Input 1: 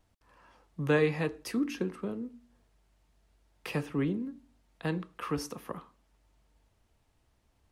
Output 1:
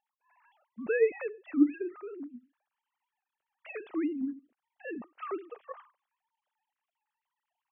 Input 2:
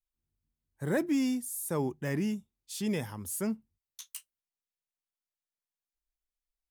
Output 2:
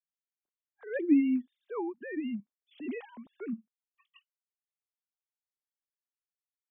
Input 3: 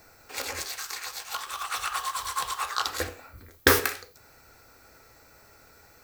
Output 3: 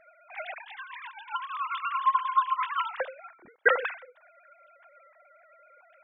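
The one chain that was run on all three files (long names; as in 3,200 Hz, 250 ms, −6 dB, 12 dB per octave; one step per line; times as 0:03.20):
three sine waves on the formant tracks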